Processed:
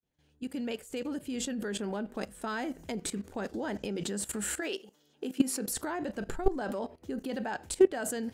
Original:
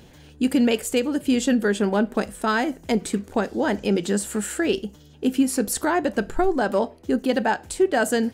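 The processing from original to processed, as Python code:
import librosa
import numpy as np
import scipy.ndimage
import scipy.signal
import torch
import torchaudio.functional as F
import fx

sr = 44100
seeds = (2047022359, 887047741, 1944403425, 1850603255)

y = fx.fade_in_head(x, sr, length_s=2.08)
y = fx.highpass(y, sr, hz=fx.line((4.6, 550.0), (5.69, 180.0)), slope=12, at=(4.6, 5.69), fade=0.02)
y = fx.level_steps(y, sr, step_db=17)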